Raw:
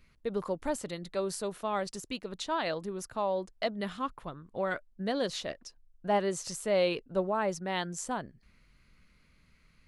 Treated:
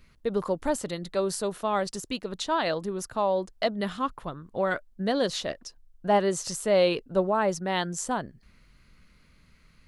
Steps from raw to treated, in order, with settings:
parametric band 2,300 Hz −3 dB 0.42 octaves
level +5.5 dB

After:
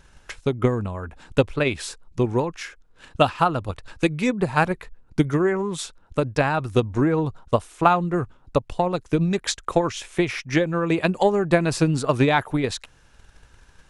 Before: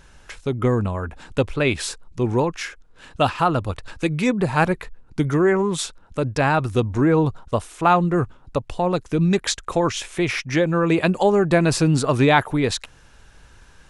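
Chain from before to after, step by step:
transient designer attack +8 dB, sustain 0 dB
level −5 dB

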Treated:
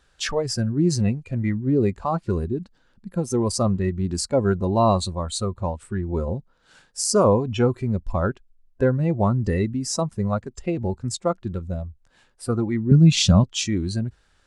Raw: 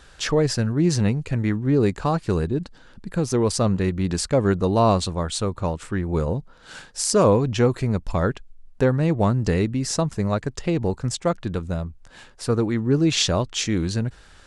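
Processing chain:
noise reduction from a noise print of the clip's start 13 dB
0:12.91–0:13.44: low shelf with overshoot 260 Hz +8.5 dB, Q 3

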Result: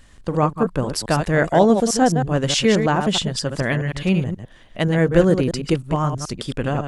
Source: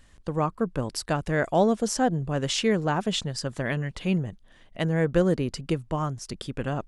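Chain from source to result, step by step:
delay that plays each chunk backwards 106 ms, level −7 dB
level +6.5 dB

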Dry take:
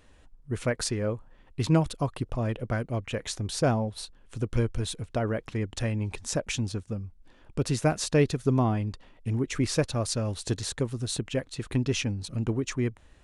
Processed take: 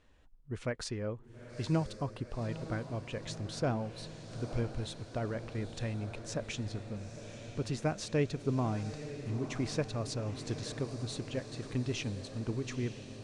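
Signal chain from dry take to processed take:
low-pass filter 6,600 Hz 12 dB per octave
on a send: feedback delay with all-pass diffusion 914 ms, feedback 67%, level −10.5 dB
on the sum: level −8 dB

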